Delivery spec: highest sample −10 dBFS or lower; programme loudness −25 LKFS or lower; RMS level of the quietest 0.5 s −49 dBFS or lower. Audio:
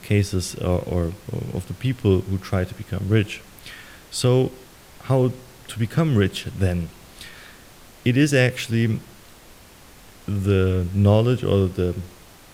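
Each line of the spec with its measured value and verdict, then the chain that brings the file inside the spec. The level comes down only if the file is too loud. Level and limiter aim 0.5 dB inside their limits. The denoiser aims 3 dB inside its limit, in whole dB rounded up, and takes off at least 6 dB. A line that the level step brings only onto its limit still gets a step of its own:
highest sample −5.5 dBFS: out of spec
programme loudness −22.0 LKFS: out of spec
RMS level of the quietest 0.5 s −47 dBFS: out of spec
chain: level −3.5 dB
brickwall limiter −10.5 dBFS

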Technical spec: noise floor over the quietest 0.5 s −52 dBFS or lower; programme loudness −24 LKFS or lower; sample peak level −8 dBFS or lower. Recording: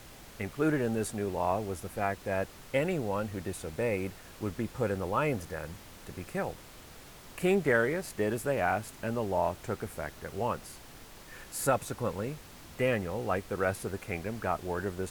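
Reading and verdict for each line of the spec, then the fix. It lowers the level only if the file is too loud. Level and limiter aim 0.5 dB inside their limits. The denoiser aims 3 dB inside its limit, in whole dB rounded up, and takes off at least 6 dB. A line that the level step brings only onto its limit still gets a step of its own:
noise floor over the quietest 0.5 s −50 dBFS: out of spec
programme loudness −32.5 LKFS: in spec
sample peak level −13.0 dBFS: in spec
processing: broadband denoise 6 dB, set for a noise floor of −50 dBFS

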